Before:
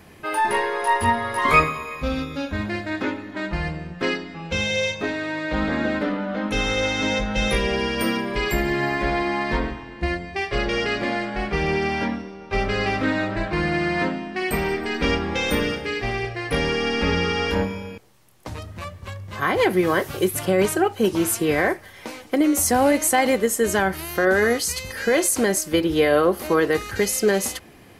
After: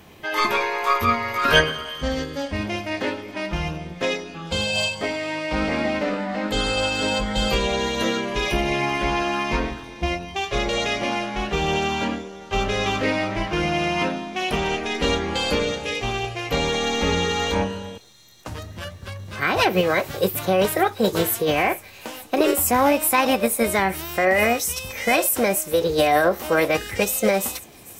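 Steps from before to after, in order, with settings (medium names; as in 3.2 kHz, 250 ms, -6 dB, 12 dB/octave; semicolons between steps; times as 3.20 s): feedback echo behind a high-pass 444 ms, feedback 68%, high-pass 4.6 kHz, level -15.5 dB; formant shift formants +4 st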